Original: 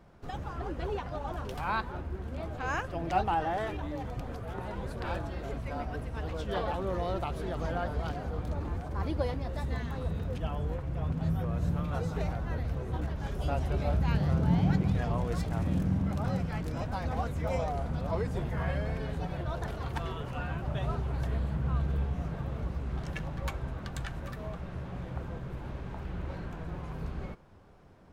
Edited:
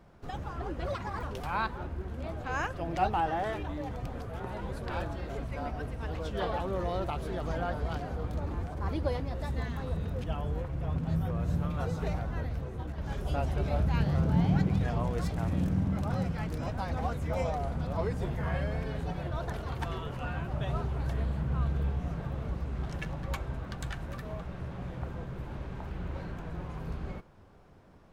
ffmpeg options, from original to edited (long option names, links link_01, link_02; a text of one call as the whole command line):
ffmpeg -i in.wav -filter_complex "[0:a]asplit=4[link_01][link_02][link_03][link_04];[link_01]atrim=end=0.864[link_05];[link_02]atrim=start=0.86:end=1.37,asetpts=PTS-STARTPTS,asetrate=60858,aresample=44100[link_06];[link_03]atrim=start=1.366:end=13.12,asetpts=PTS-STARTPTS,afade=type=out:start_time=11.074:duration=0.68:silence=0.501187[link_07];[link_04]atrim=start=13.12,asetpts=PTS-STARTPTS,afade=type=in:duration=0.004:curve=hsin:silence=0.501187[link_08];[link_05][link_06]acrossfade=duration=0.004:curve1=hsin:curve2=hsin[link_09];[link_07][link_08]concat=n=2:v=0:a=1[link_10];[link_09][link_10]acrossfade=duration=0.004:curve1=hsin:curve2=hsin" out.wav